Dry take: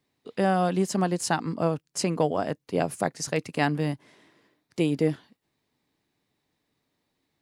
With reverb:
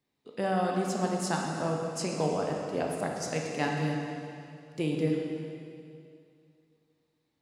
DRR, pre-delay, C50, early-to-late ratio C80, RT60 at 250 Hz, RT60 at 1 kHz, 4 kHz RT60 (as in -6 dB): -0.5 dB, 7 ms, 1.0 dB, 2.5 dB, 2.5 s, 2.5 s, 2.3 s